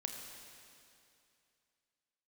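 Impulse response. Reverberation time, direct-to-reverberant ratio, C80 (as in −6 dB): 2.6 s, 2.5 dB, 4.5 dB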